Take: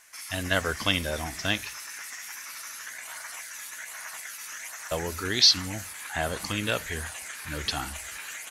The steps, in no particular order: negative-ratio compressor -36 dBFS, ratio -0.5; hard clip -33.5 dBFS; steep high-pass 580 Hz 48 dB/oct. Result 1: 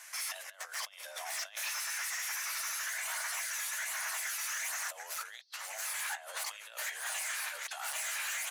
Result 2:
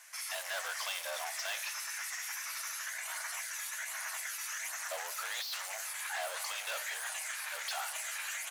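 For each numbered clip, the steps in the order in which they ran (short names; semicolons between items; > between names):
negative-ratio compressor > hard clip > steep high-pass; hard clip > steep high-pass > negative-ratio compressor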